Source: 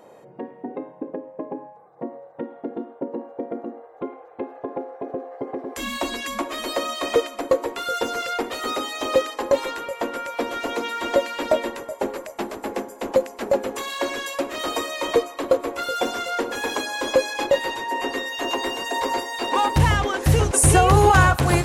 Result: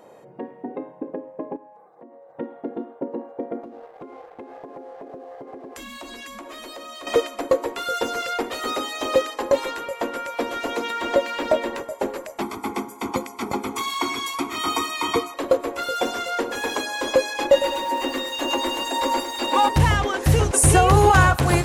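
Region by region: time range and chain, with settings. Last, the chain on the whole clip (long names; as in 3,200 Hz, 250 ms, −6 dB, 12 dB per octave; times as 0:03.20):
0:01.56–0:02.29: high-pass filter 180 Hz 24 dB per octave + downward compressor 4 to 1, threshold −44 dBFS
0:03.63–0:07.07: leveller curve on the samples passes 1 + downward compressor 8 to 1, threshold −35 dBFS
0:10.90–0:11.82: running median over 3 samples + high-shelf EQ 5,700 Hz −4.5 dB + upward compression, threshold −22 dBFS
0:12.41–0:15.34: high-pass filter 69 Hz + comb filter 0.9 ms, depth 95%
0:17.45–0:19.69: comb filter 3.5 ms, depth 61% + feedback echo at a low word length 105 ms, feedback 55%, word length 6 bits, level −10.5 dB
whole clip: no processing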